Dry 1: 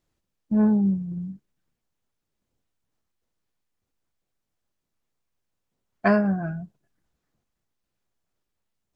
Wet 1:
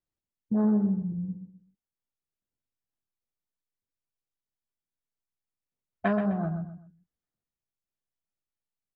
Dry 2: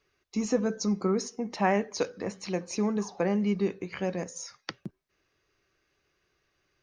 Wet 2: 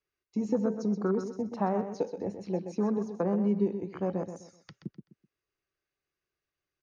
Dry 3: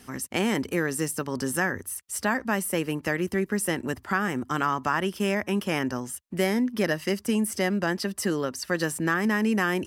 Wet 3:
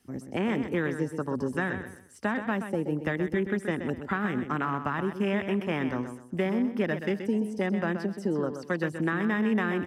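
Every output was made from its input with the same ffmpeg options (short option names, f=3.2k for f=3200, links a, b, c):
-filter_complex "[0:a]acrossover=split=300|8000[a][b][c];[a]acompressor=threshold=-28dB:ratio=4[d];[b]acompressor=threshold=-27dB:ratio=4[e];[c]acompressor=threshold=-51dB:ratio=4[f];[d][e][f]amix=inputs=3:normalize=0,afwtdn=0.0178,asplit=2[g][h];[h]aecho=0:1:127|254|381:0.355|0.106|0.0319[i];[g][i]amix=inputs=2:normalize=0"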